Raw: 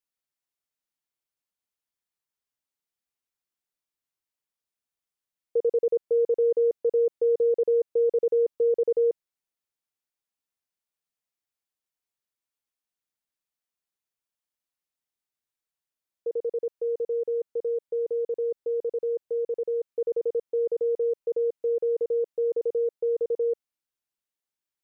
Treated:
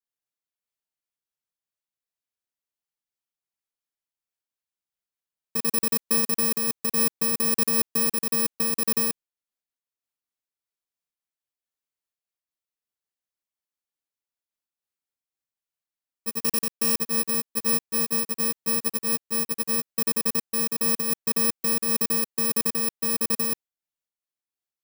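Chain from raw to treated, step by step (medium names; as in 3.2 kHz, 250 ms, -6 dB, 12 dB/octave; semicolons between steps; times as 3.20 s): bit-reversed sample order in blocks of 64 samples; 16.41–16.99 s: waveshaping leveller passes 5; level held to a coarse grid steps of 9 dB; random flutter of the level, depth 60%; trim +7.5 dB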